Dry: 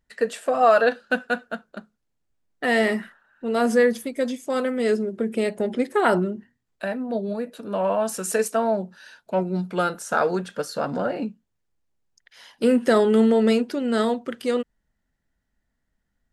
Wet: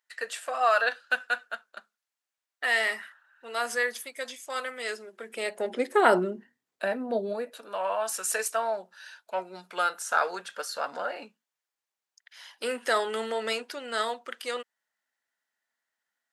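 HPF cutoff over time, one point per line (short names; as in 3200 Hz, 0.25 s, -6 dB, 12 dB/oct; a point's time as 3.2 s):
5.21 s 1100 Hz
6 s 320 Hz
7.22 s 320 Hz
7.73 s 900 Hz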